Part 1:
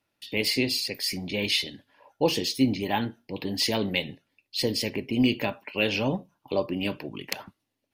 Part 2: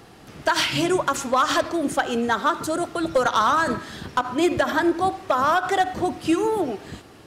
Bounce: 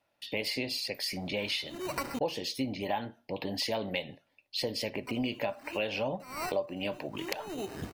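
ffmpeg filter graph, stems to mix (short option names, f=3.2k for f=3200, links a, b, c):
-filter_complex "[0:a]firequalizer=gain_entry='entry(400,0);entry(580,11);entry(1200,4);entry(6900,-1)':delay=0.05:min_phase=1,volume=-2.5dB,asplit=2[a][b];[1:a]lowpass=f=1.9k:p=1,acrusher=samples=13:mix=1:aa=0.000001,volume=22.5dB,asoftclip=hard,volume=-22.5dB,adelay=900,volume=-1dB,asplit=3[c][d][e];[c]atrim=end=2.19,asetpts=PTS-STARTPTS,afade=t=out:st=2.186:d=0.004:c=hsin[f];[d]atrim=start=2.19:end=4.94,asetpts=PTS-STARTPTS,volume=0[g];[e]atrim=start=4.94,asetpts=PTS-STARTPTS,afade=t=in:d=0.004:c=hsin[h];[f][g][h]concat=n=3:v=0:a=1[i];[b]apad=whole_len=360100[j];[i][j]sidechaincompress=threshold=-49dB:ratio=16:attack=26:release=238[k];[a][k]amix=inputs=2:normalize=0,acompressor=threshold=-32dB:ratio=3"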